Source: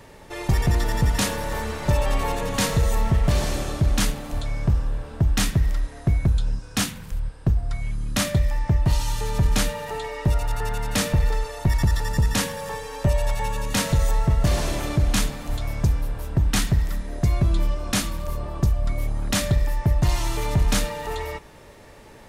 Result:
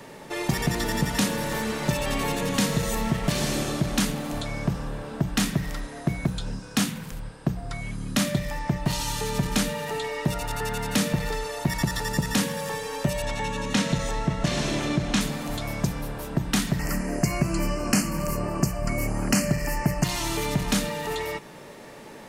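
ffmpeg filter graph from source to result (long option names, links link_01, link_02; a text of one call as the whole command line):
ffmpeg -i in.wav -filter_complex "[0:a]asettb=1/sr,asplit=3[link_01][link_02][link_03];[link_01]atrim=end=13.224[link_04];[link_02]atrim=start=13.22:end=15.21,asetpts=PTS-STARTPTS,afade=type=in:duration=0.004:curve=qsin,afade=type=out:start_time=1.986:duration=0.004:curve=qsin,lowpass=6500,aeval=exprs='val(0)+0.0178*(sin(2*PI*60*n/s)+sin(2*PI*2*60*n/s)/2+sin(2*PI*3*60*n/s)/3+sin(2*PI*4*60*n/s)/4+sin(2*PI*5*60*n/s)/5)':channel_layout=same,bandreject=frequency=4700:width=18[link_05];[link_03]atrim=start=15.206[link_06];[link_04][link_05]acrossfade=duration=0.004:curve1=hsin:curve2=qsin[link_07];[link_07][link_06]acrossfade=duration=0.004:curve1=qsin:curve2=hsin,asettb=1/sr,asplit=3[link_08][link_09][link_10];[link_08]atrim=end=16.794[link_11];[link_09]atrim=start=16.79:end=20.04,asetpts=PTS-STARTPTS,afade=type=in:duration=0.004:curve=qsin,afade=type=out:start_time=3.246:duration=0.004:curve=qsin,equalizer=frequency=7500:width_type=o:width=0.3:gain=4,acontrast=26,asuperstop=centerf=3600:order=8:qfactor=2.6[link_12];[link_10]atrim=start=20.036[link_13];[link_11][link_12]acrossfade=duration=0.004:curve1=hsin:curve2=qsin[link_14];[link_14][link_13]acrossfade=duration=0.004:curve1=qsin:curve2=hsin,lowshelf=frequency=110:width_type=q:width=1.5:gain=-12.5,bandreject=frequency=60:width_type=h:width=6,bandreject=frequency=120:width_type=h:width=6,bandreject=frequency=180:width_type=h:width=6,acrossover=split=390|1600[link_15][link_16][link_17];[link_15]acompressor=threshold=-25dB:ratio=4[link_18];[link_16]acompressor=threshold=-37dB:ratio=4[link_19];[link_17]acompressor=threshold=-30dB:ratio=4[link_20];[link_18][link_19][link_20]amix=inputs=3:normalize=0,volume=3.5dB" out.wav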